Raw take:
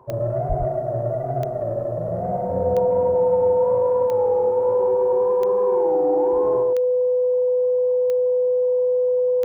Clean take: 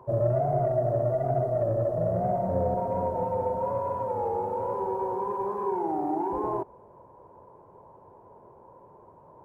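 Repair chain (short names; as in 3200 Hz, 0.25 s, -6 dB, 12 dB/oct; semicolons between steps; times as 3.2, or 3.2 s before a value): de-click; notch 500 Hz, Q 30; 0.48–0.6 HPF 140 Hz 24 dB/oct; inverse comb 0.104 s -4.5 dB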